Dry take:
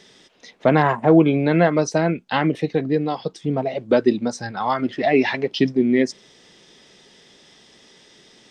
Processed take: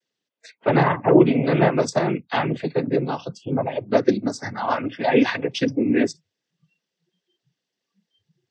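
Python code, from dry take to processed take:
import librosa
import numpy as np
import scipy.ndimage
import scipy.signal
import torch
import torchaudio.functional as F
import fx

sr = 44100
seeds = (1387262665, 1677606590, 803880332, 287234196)

y = fx.noise_vocoder(x, sr, seeds[0], bands=16)
y = fx.noise_reduce_blind(y, sr, reduce_db=30)
y = y * 10.0 ** (-1.0 / 20.0)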